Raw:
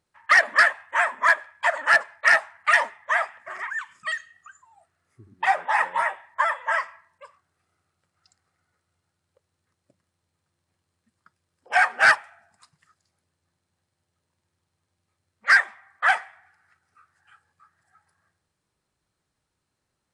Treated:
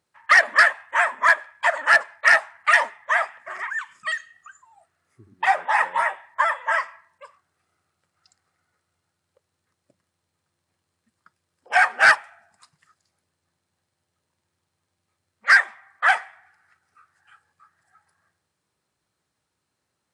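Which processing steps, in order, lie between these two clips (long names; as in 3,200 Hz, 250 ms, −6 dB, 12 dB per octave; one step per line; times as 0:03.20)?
high-pass filter 67 Hz
low-shelf EQ 220 Hz −4 dB
level +2 dB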